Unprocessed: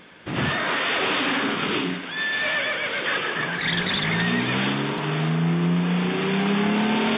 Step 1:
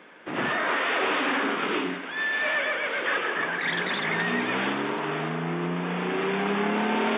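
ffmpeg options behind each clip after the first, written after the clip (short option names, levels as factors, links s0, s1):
-filter_complex "[0:a]acrossover=split=230 2700:gain=0.0891 1 0.178[s0][s1][s2];[s0][s1][s2]amix=inputs=3:normalize=0"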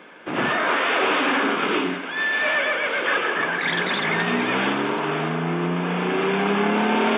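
-af "bandreject=f=1900:w=14,volume=1.78"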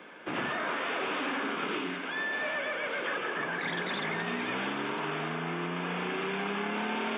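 -filter_complex "[0:a]acrossover=split=200|1100[s0][s1][s2];[s0]acompressor=threshold=0.00891:ratio=4[s3];[s1]acompressor=threshold=0.0251:ratio=4[s4];[s2]acompressor=threshold=0.0282:ratio=4[s5];[s3][s4][s5]amix=inputs=3:normalize=0,volume=0.631"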